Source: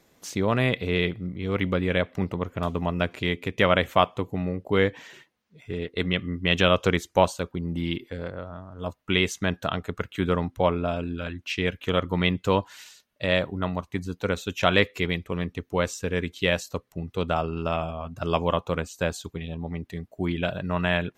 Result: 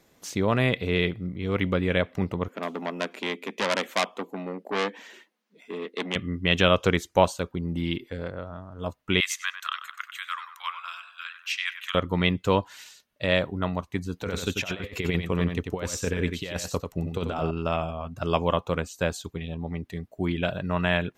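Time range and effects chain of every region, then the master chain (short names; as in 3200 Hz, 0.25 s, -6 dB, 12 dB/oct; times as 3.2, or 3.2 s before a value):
2.48–6.16 elliptic high-pass 200 Hz + core saturation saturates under 3600 Hz
9.2–11.95 Chebyshev high-pass 1100 Hz, order 5 + high shelf 4400 Hz +6 dB + tape echo 96 ms, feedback 58%, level -7.5 dB, low-pass 1800 Hz
14.13–17.51 negative-ratio compressor -27 dBFS, ratio -0.5 + echo 92 ms -6.5 dB
whole clip: dry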